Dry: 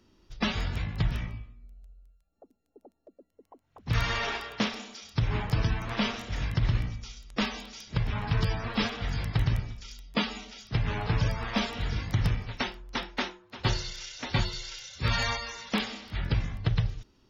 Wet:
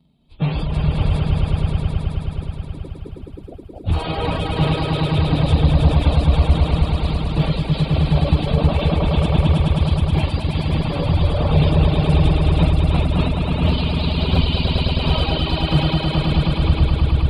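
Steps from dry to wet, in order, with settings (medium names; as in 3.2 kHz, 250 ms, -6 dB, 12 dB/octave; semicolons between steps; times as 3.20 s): frequency-domain pitch shifter -6.5 st; level rider gain up to 13 dB; hard clipper -8.5 dBFS, distortion -23 dB; graphic EQ with 31 bands 160 Hz +8 dB, 2 kHz -7 dB, 6.3 kHz -11 dB; peak limiter -14 dBFS, peak gain reduction 10 dB; high-pass 41 Hz; peaking EQ 1.6 kHz -15 dB 0.96 oct; echo with a slow build-up 106 ms, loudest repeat 5, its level -3 dB; reverb removal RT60 1.6 s; trim +4.5 dB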